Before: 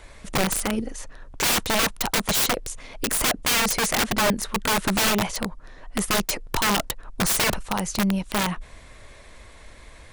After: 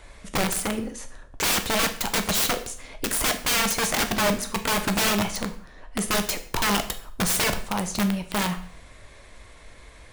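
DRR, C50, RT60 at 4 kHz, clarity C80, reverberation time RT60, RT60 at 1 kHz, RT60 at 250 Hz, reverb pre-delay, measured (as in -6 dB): 7.0 dB, 12.5 dB, 0.50 s, 16.0 dB, 0.55 s, 0.55 s, 0.50 s, 5 ms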